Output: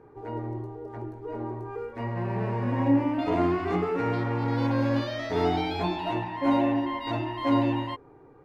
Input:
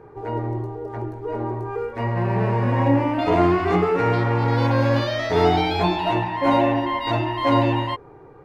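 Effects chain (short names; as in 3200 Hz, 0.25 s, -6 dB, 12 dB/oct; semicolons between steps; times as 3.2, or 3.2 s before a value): bell 270 Hz +7.5 dB 0.38 oct; gain -8.5 dB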